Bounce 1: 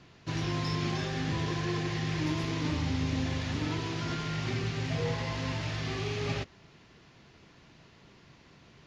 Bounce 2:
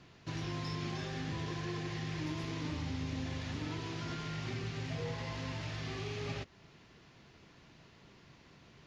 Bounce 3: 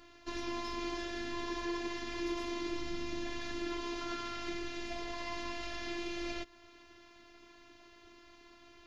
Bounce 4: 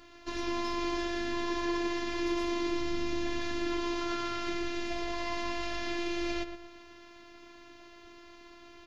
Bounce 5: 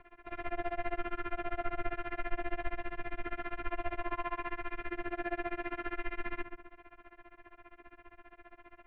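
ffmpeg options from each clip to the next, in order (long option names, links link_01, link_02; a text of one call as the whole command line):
ffmpeg -i in.wav -af "acompressor=threshold=-41dB:ratio=1.5,volume=-2.5dB" out.wav
ffmpeg -i in.wav -af "afftfilt=real='hypot(re,im)*cos(PI*b)':imag='0':win_size=512:overlap=0.75,volume=5.5dB" out.wav
ffmpeg -i in.wav -filter_complex "[0:a]asplit=2[link_01][link_02];[link_02]adelay=119,lowpass=frequency=1700:poles=1,volume=-8dB,asplit=2[link_03][link_04];[link_04]adelay=119,lowpass=frequency=1700:poles=1,volume=0.33,asplit=2[link_05][link_06];[link_06]adelay=119,lowpass=frequency=1700:poles=1,volume=0.33,asplit=2[link_07][link_08];[link_08]adelay=119,lowpass=frequency=1700:poles=1,volume=0.33[link_09];[link_01][link_03][link_05][link_07][link_09]amix=inputs=5:normalize=0,volume=3dB" out.wav
ffmpeg -i in.wav -af "tremolo=f=15:d=0.97,highpass=frequency=300:width_type=q:width=0.5412,highpass=frequency=300:width_type=q:width=1.307,lowpass=frequency=2700:width_type=q:width=0.5176,lowpass=frequency=2700:width_type=q:width=0.7071,lowpass=frequency=2700:width_type=q:width=1.932,afreqshift=-340,volume=4dB" out.wav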